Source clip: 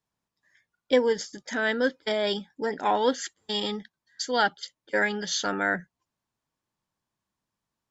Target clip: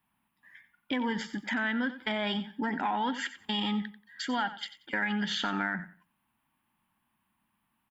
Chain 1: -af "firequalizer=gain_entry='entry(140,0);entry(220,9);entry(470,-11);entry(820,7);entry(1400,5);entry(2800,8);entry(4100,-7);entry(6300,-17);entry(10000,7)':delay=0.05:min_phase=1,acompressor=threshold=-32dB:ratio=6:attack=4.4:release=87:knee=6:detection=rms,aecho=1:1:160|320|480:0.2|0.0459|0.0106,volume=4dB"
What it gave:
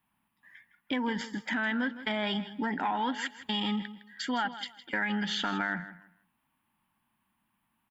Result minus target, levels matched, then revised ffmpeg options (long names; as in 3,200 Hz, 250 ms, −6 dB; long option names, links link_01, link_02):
echo 69 ms late
-af "firequalizer=gain_entry='entry(140,0);entry(220,9);entry(470,-11);entry(820,7);entry(1400,5);entry(2800,8);entry(4100,-7);entry(6300,-17);entry(10000,7)':delay=0.05:min_phase=1,acompressor=threshold=-32dB:ratio=6:attack=4.4:release=87:knee=6:detection=rms,aecho=1:1:91|182|273:0.2|0.0459|0.0106,volume=4dB"